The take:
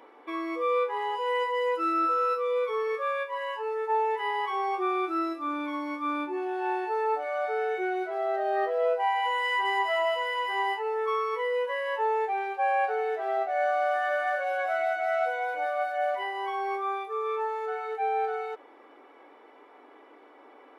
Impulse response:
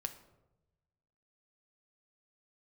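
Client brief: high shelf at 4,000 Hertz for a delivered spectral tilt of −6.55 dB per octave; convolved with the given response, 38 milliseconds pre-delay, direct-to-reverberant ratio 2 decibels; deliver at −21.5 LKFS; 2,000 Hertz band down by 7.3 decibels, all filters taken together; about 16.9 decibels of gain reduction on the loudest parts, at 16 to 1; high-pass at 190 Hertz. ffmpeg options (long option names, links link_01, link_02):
-filter_complex "[0:a]highpass=190,equalizer=frequency=2000:width_type=o:gain=-7.5,highshelf=frequency=4000:gain=-8,acompressor=threshold=-41dB:ratio=16,asplit=2[link_01][link_02];[1:a]atrim=start_sample=2205,adelay=38[link_03];[link_02][link_03]afir=irnorm=-1:irlink=0,volume=-1dB[link_04];[link_01][link_04]amix=inputs=2:normalize=0,volume=20.5dB"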